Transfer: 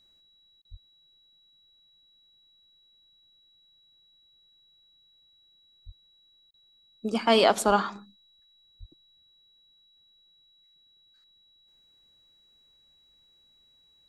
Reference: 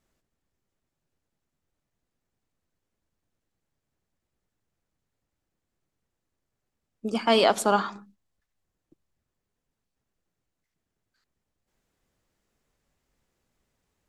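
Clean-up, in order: notch 3900 Hz, Q 30; de-plosive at 0.7/5.85/7.66/8.79; interpolate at 0.62/6.51, 28 ms

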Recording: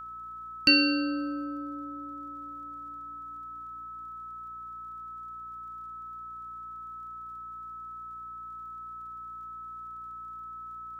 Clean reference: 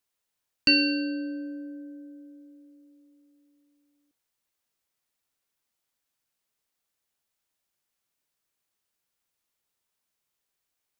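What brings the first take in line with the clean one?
de-click; de-hum 58.9 Hz, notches 6; notch 1300 Hz, Q 30

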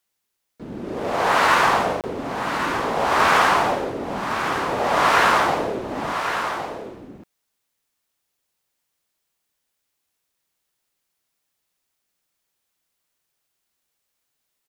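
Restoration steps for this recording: interpolate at 2.01, 28 ms; inverse comb 1.11 s -8 dB

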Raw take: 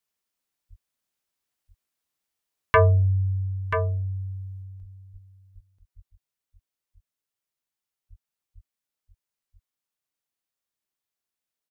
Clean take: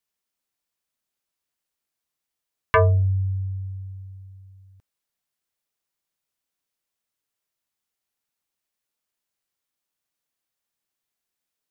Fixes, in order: de-plosive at 0.69/4.8/5.12/5.54/5.95/8.09/8.54; inverse comb 0.985 s -8 dB; gain correction +5.5 dB, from 4.62

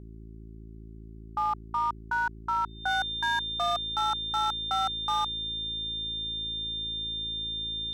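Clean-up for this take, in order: clip repair -22 dBFS; de-hum 54.9 Hz, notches 7; notch 3600 Hz, Q 30

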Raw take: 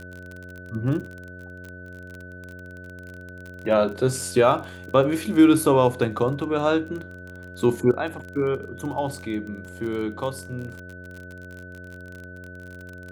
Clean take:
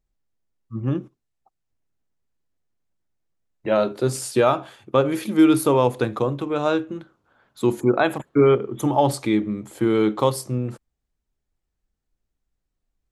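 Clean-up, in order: de-click; de-hum 90.4 Hz, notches 7; notch 1500 Hz, Q 30; gain correction +8.5 dB, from 7.91

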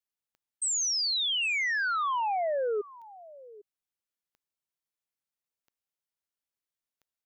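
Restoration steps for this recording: de-click; inverse comb 0.802 s -20 dB

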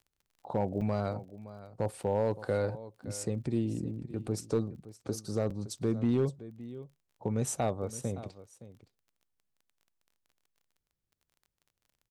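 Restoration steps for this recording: clip repair -20.5 dBFS; de-click; interpolate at 0.81/2.03/5.5, 5.4 ms; inverse comb 0.567 s -16 dB

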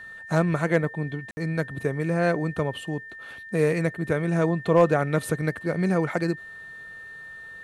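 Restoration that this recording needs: clip repair -8.5 dBFS; notch 1800 Hz, Q 30; room tone fill 1.31–1.37

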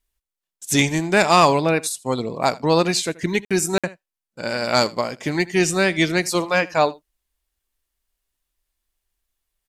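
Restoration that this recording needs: interpolate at 3.45/3.78, 56 ms; inverse comb 80 ms -21.5 dB

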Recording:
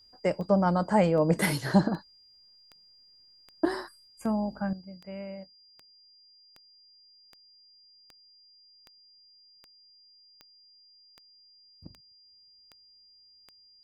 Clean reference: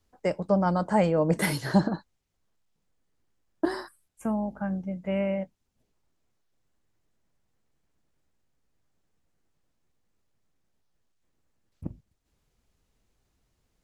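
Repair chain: de-click; notch 4800 Hz, Q 30; gain 0 dB, from 4.73 s +12 dB

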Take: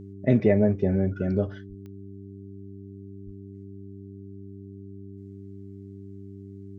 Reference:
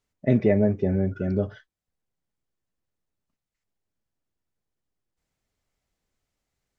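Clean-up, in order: de-click; de-hum 98.3 Hz, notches 4; 1.68–1.8 HPF 140 Hz 24 dB/oct; 3.25–3.37 HPF 140 Hz 24 dB/oct

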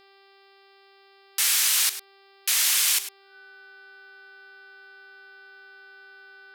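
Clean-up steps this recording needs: de-hum 392.7 Hz, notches 13; notch 1500 Hz, Q 30; inverse comb 0.102 s -13 dB

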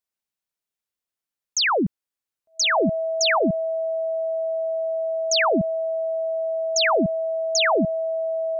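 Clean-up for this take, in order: notch 650 Hz, Q 30

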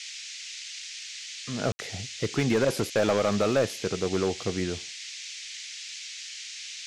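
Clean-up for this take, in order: clip repair -17.5 dBFS; room tone fill 1.72–1.79; noise print and reduce 30 dB

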